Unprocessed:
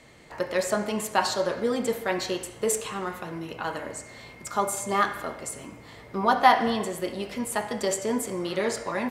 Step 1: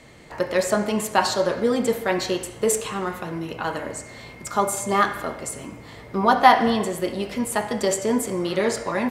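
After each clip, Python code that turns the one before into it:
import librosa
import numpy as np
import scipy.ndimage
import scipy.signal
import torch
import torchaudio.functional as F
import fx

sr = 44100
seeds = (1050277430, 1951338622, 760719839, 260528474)

y = fx.low_shelf(x, sr, hz=410.0, db=3.0)
y = F.gain(torch.from_numpy(y), 3.5).numpy()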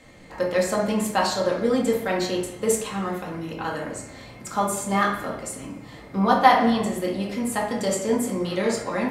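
y = fx.room_shoebox(x, sr, seeds[0], volume_m3=440.0, walls='furnished', distance_m=2.1)
y = F.gain(torch.from_numpy(y), -4.5).numpy()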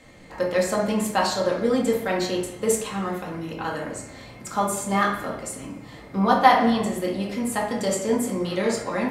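y = x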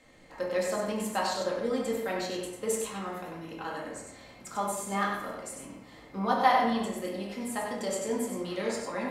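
y = fx.peak_eq(x, sr, hz=98.0, db=-7.0, octaves=1.8)
y = y + 10.0 ** (-5.5 / 20.0) * np.pad(y, (int(96 * sr / 1000.0), 0))[:len(y)]
y = F.gain(torch.from_numpy(y), -8.0).numpy()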